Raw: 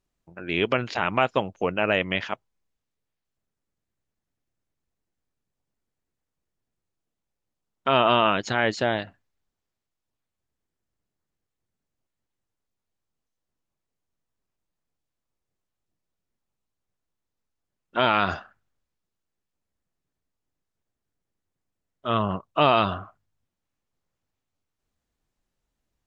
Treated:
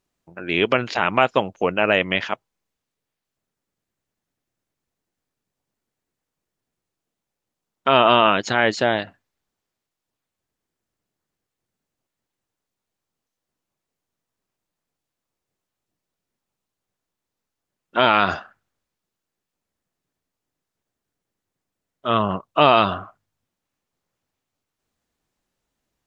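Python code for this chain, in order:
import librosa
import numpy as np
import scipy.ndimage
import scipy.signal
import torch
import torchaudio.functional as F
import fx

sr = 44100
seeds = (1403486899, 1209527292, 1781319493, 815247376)

y = fx.low_shelf(x, sr, hz=87.0, db=-11.5)
y = F.gain(torch.from_numpy(y), 5.0).numpy()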